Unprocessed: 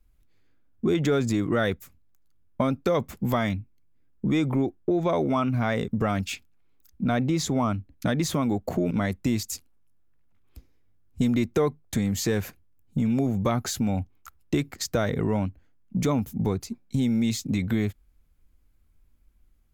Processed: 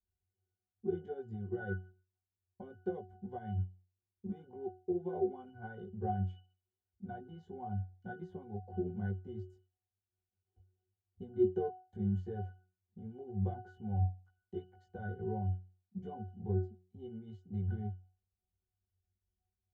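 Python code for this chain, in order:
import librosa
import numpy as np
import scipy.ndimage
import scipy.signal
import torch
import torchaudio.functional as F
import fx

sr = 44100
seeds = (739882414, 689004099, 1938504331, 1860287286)

y = fx.peak_eq(x, sr, hz=560.0, db=11.5, octaves=1.7)
y = fx.octave_resonator(y, sr, note='F#', decay_s=0.41)
y = fx.chorus_voices(y, sr, voices=6, hz=0.77, base_ms=19, depth_ms=1.2, mix_pct=40)
y = fx.upward_expand(y, sr, threshold_db=-46.0, expansion=1.5)
y = y * 10.0 ** (4.5 / 20.0)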